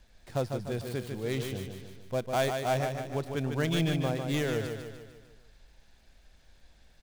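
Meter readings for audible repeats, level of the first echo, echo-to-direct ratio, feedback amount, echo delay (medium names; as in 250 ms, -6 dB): 5, -6.0 dB, -4.5 dB, 51%, 149 ms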